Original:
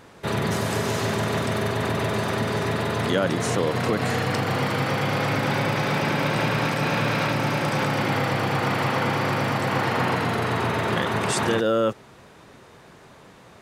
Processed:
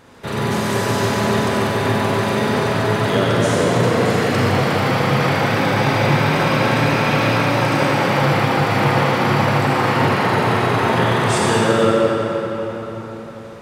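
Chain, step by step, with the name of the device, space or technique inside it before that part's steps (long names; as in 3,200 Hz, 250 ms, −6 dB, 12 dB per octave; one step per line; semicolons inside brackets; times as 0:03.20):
cathedral (convolution reverb RT60 4.4 s, pre-delay 36 ms, DRR −5.5 dB)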